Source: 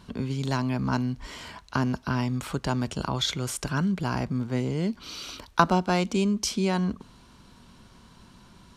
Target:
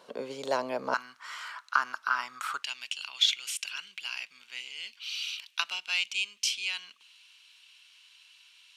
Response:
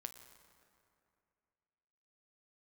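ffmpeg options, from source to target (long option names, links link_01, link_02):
-af "asetnsamples=nb_out_samples=441:pad=0,asendcmd='0.94 highpass f 1300;2.63 highpass f 2700',highpass=frequency=530:width_type=q:width=4.7,volume=-3dB"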